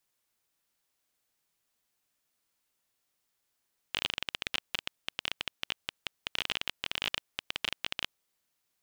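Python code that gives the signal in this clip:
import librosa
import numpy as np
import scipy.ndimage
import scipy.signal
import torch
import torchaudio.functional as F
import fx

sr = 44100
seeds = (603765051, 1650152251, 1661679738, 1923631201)

y = fx.geiger_clicks(sr, seeds[0], length_s=4.12, per_s=19.0, level_db=-13.0)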